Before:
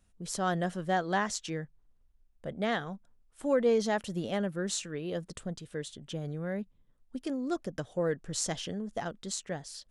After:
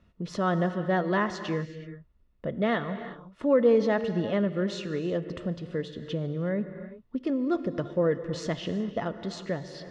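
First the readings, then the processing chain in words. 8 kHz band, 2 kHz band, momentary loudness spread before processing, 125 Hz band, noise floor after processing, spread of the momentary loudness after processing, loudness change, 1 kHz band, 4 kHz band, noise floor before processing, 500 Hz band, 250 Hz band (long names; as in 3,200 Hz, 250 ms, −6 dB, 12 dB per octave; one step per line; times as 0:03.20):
below −10 dB, +2.5 dB, 12 LU, +6.0 dB, −63 dBFS, 12 LU, +4.5 dB, +1.5 dB, −1.0 dB, −67 dBFS, +5.5 dB, +6.5 dB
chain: high-frequency loss of the air 260 metres
notch comb filter 790 Hz
reverb whose tail is shaped and stops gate 400 ms flat, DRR 11 dB
in parallel at +1 dB: downward compressor, threshold −47 dBFS, peak gain reduction 22 dB
on the sum: level +5 dB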